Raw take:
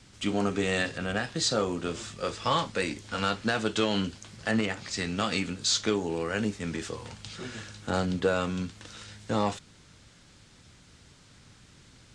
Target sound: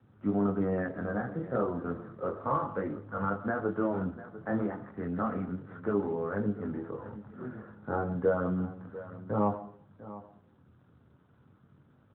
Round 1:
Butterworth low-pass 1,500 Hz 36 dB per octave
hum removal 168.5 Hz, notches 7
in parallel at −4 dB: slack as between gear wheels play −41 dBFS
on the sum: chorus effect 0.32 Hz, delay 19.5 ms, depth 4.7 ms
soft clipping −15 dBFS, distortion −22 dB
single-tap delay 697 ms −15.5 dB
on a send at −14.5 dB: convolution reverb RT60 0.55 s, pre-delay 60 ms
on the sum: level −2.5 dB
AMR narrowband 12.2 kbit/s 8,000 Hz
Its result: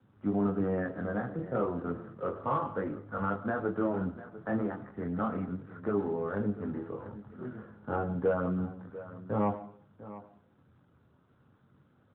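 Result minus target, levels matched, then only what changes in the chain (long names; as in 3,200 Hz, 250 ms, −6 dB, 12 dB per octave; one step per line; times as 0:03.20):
soft clipping: distortion +15 dB; slack as between gear wheels: distortion +11 dB
change: slack as between gear wheels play −53 dBFS
change: soft clipping −6.5 dBFS, distortion −37 dB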